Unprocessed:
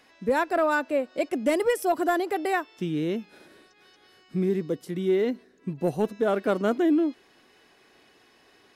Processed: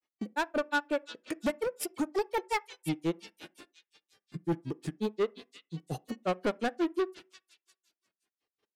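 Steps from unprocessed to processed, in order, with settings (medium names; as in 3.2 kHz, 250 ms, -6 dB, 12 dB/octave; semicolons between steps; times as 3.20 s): gate -54 dBFS, range -33 dB; in parallel at -2 dB: peak limiter -25 dBFS, peak gain reduction 11 dB; on the sum: granulator 94 ms, grains 5.6 per s, spray 18 ms, pitch spread up and down by 3 st; saturation -26 dBFS, distortion -8 dB; repeats whose band climbs or falls 347 ms, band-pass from 3.5 kHz, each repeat 0.7 oct, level -4.5 dB; on a send at -14.5 dB: reverberation RT60 0.30 s, pre-delay 3 ms; on the sum: trim +2 dB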